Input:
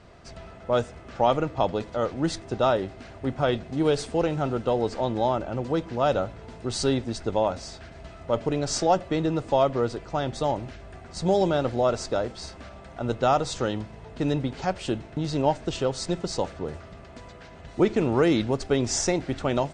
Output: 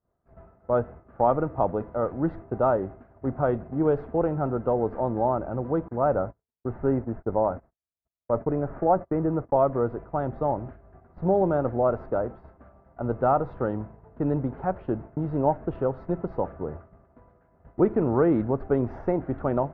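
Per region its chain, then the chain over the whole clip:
0:05.88–0:09.56: noise gate −38 dBFS, range −29 dB + Butterworth low-pass 2,500 Hz
whole clip: low-pass filter 1,400 Hz 24 dB per octave; downward expander −35 dBFS

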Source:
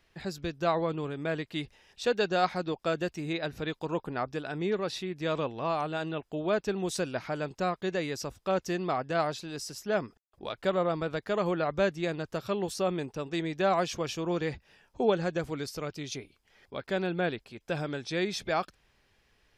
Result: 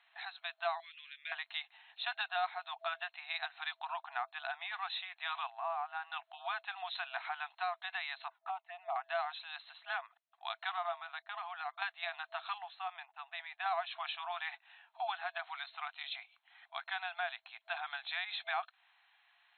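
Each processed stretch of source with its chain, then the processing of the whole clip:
0:00.80–0:01.32: Chebyshev band-stop filter 110–2,100 Hz, order 3 + parametric band 1,300 Hz −6.5 dB 0.33 octaves
0:05.50–0:06.12: high-frequency loss of the air 430 metres + linearly interpolated sample-rate reduction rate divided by 6×
0:08.28–0:08.96: low-pass filter 1,400 Hz + flanger swept by the level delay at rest 2.9 ms, full sweep at −27 dBFS
0:10.96–0:11.82: noise gate −42 dBFS, range −18 dB + downward compressor, threshold −33 dBFS
0:12.58–0:13.66: band-pass filter 480–2,400 Hz + parametric band 1,200 Hz −5 dB 2.2 octaves + downward expander −55 dBFS
whole clip: brick-wall band-pass 660–4,200 Hz; downward compressor 2.5 to 1, threshold −38 dBFS; level +2 dB

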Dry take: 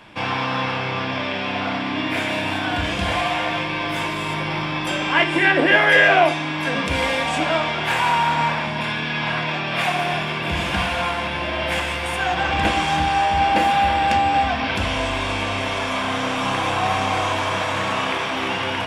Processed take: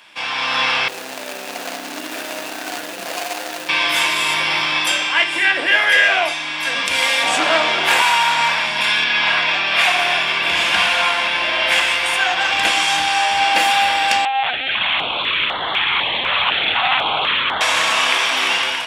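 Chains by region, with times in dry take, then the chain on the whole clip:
0:00.88–0:03.69: running median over 41 samples + high-pass filter 280 Hz
0:07.23–0:08.02: parametric band 350 Hz +10.5 dB 2.5 octaves + saturating transformer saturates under 1,100 Hz
0:09.04–0:12.41: high-shelf EQ 6,800 Hz −11 dB + mains-hum notches 50/100/150/200/250 Hz
0:14.25–0:17.61: mains-hum notches 50/100/150/200/250/300/350/400/450/500 Hz + linear-prediction vocoder at 8 kHz pitch kept + notch on a step sequencer 4 Hz 320–2,500 Hz
whole clip: high-pass filter 1,200 Hz 6 dB per octave; high-shelf EQ 2,500 Hz +9 dB; automatic gain control gain up to 9.5 dB; level −1 dB

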